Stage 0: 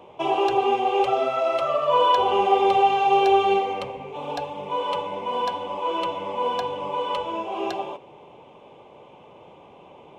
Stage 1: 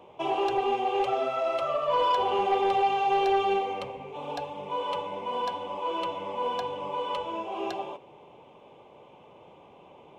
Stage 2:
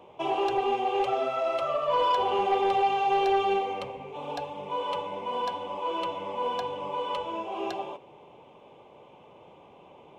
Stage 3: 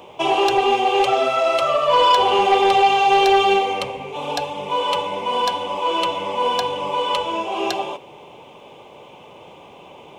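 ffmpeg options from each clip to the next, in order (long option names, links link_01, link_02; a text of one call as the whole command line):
ffmpeg -i in.wav -af "asoftclip=type=tanh:threshold=-12dB,volume=-4.5dB" out.wav
ffmpeg -i in.wav -af anull out.wav
ffmpeg -i in.wav -af "highshelf=frequency=2700:gain=11.5,volume=8.5dB" out.wav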